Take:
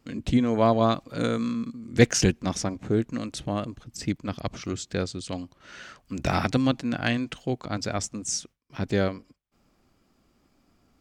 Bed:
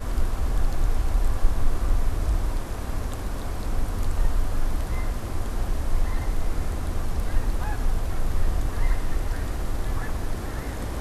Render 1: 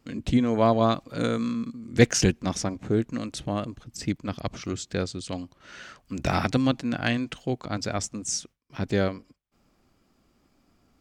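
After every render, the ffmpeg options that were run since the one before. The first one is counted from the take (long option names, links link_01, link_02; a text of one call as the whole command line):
ffmpeg -i in.wav -af anull out.wav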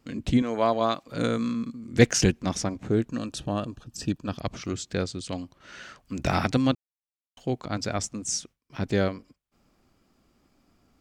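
ffmpeg -i in.wav -filter_complex "[0:a]asettb=1/sr,asplit=3[link_01][link_02][link_03];[link_01]atrim=end=0.424[link_04];[link_02]atrim=start=0.42:end=1.08,asetpts=PTS-STARTPTS,afade=type=in:duration=0.004:curve=qsin,afade=type=out:start_time=0.656:duration=0.004:curve=qsin,highpass=frequency=460:poles=1[link_05];[link_03]atrim=start=1.076[link_06];[link_04][link_05]acrossfade=duration=0.004:curve1=hsin:curve2=qsin[link_07];[link_07][link_06]acrossfade=duration=0.004:curve1=qsin:curve2=hsin,asettb=1/sr,asplit=3[link_08][link_09][link_10];[link_08]atrim=end=3.094[link_11];[link_09]atrim=start=3.09:end=4.36,asetpts=PTS-STARTPTS,afade=type=in:duration=0.004:curve=qsin,afade=type=out:start_time=1.266:duration=0.004:curve=qsin,asuperstop=centerf=2100:order=12:qfactor=5.4[link_12];[link_10]atrim=start=4.356[link_13];[link_11][link_12]acrossfade=duration=0.004:curve1=hsin:curve2=qsin[link_14];[link_14][link_13]acrossfade=duration=0.004:curve1=qsin:curve2=hsin,asplit=3[link_15][link_16][link_17];[link_15]atrim=end=6.75,asetpts=PTS-STARTPTS,afade=type=out:start_time=6.746:duration=0.004:curve=hsin[link_18];[link_16]atrim=start=6.75:end=7.37,asetpts=PTS-STARTPTS,volume=0[link_19];[link_17]atrim=start=7.37,asetpts=PTS-STARTPTS,afade=type=in:duration=0.004:curve=hsin[link_20];[link_18][link_19][link_20]concat=n=3:v=0:a=1" out.wav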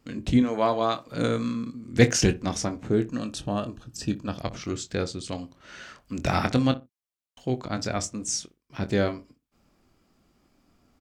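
ffmpeg -i in.wav -filter_complex "[0:a]asplit=2[link_01][link_02];[link_02]adelay=24,volume=-10dB[link_03];[link_01][link_03]amix=inputs=2:normalize=0,asplit=2[link_04][link_05];[link_05]adelay=60,lowpass=frequency=970:poles=1,volume=-14.5dB,asplit=2[link_06][link_07];[link_07]adelay=60,lowpass=frequency=970:poles=1,volume=0.23[link_08];[link_04][link_06][link_08]amix=inputs=3:normalize=0" out.wav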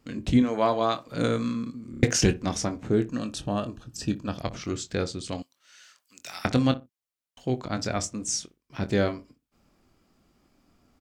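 ffmpeg -i in.wav -filter_complex "[0:a]asettb=1/sr,asplit=3[link_01][link_02][link_03];[link_01]atrim=end=5.424[link_04];[link_02]atrim=start=5.42:end=6.45,asetpts=PTS-STARTPTS,afade=type=in:duration=0.004:curve=qsin,afade=type=out:start_time=1.026:duration=0.004:curve=qsin,aderivative[link_05];[link_03]atrim=start=6.446[link_06];[link_04][link_05]acrossfade=duration=0.004:curve1=hsin:curve2=qsin[link_07];[link_07][link_06]acrossfade=duration=0.004:curve1=qsin:curve2=hsin,asplit=5[link_08][link_09][link_10][link_11][link_12];[link_08]atrim=end=1.942[link_13];[link_09]atrim=start=1.908:end=1.942[link_14];[link_10]atrim=start=1.908:end=1.942[link_15];[link_11]atrim=start=1.908:end=1.942[link_16];[link_12]atrim=start=2.028[link_17];[link_13][link_14]acrossfade=duration=0.004:curve1=hsin:curve2=hsin[link_18];[link_18][link_15]acrossfade=duration=0.004:curve1=hsin:curve2=hsin[link_19];[link_19][link_16]acrossfade=duration=0.004:curve1=hsin:curve2=hsin[link_20];[link_20][link_17]acrossfade=duration=0.004:curve1=hsin:curve2=hsin" out.wav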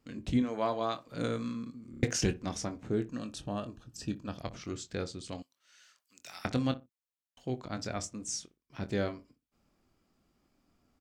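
ffmpeg -i in.wav -af "volume=-8dB" out.wav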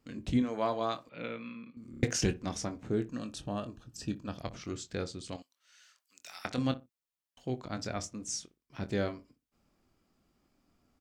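ffmpeg -i in.wav -filter_complex "[0:a]asettb=1/sr,asplit=3[link_01][link_02][link_03];[link_01]atrim=end=1.094[link_04];[link_02]atrim=start=1.09:end=1.77,asetpts=PTS-STARTPTS,afade=type=in:duration=0.004:curve=qsin,afade=type=out:start_time=0.676:duration=0.004:curve=qsin,highpass=260,equalizer=frequency=280:width_type=q:width=4:gain=-9,equalizer=frequency=420:width_type=q:width=4:gain=-8,equalizer=frequency=700:width_type=q:width=4:gain=-6,equalizer=frequency=1100:width_type=q:width=4:gain=-6,equalizer=frequency=1600:width_type=q:width=4:gain=-6,equalizer=frequency=2500:width_type=q:width=4:gain=9,lowpass=frequency=3000:width=0.5412,lowpass=frequency=3000:width=1.3066[link_05];[link_03]atrim=start=1.766[link_06];[link_04][link_05]acrossfade=duration=0.004:curve1=hsin:curve2=qsin[link_07];[link_07][link_06]acrossfade=duration=0.004:curve1=qsin:curve2=hsin,asettb=1/sr,asplit=3[link_08][link_09][link_10];[link_08]atrim=end=5.364[link_11];[link_09]atrim=start=5.36:end=6.58,asetpts=PTS-STARTPTS,afade=type=in:duration=0.004:curve=qsin,afade=type=out:start_time=1.216:duration=0.004:curve=qsin,lowshelf=frequency=350:gain=-11[link_12];[link_10]atrim=start=6.576[link_13];[link_11][link_12]acrossfade=duration=0.004:curve1=hsin:curve2=qsin[link_14];[link_14][link_13]acrossfade=duration=0.004:curve1=qsin:curve2=hsin,asettb=1/sr,asplit=3[link_15][link_16][link_17];[link_15]atrim=end=7.904[link_18];[link_16]atrim=start=7.9:end=8.3,asetpts=PTS-STARTPTS,afade=type=in:duration=0.004:curve=qsin,afade=type=out:start_time=0.396:duration=0.004:curve=qsin,equalizer=frequency=8100:width_type=o:width=0.31:gain=-5.5[link_19];[link_17]atrim=start=8.296[link_20];[link_18][link_19]acrossfade=duration=0.004:curve1=hsin:curve2=qsin[link_21];[link_21][link_20]acrossfade=duration=0.004:curve1=qsin:curve2=hsin" out.wav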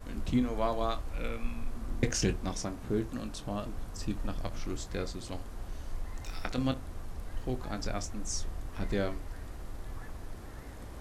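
ffmpeg -i in.wav -i bed.wav -filter_complex "[1:a]volume=-14.5dB[link_01];[0:a][link_01]amix=inputs=2:normalize=0" out.wav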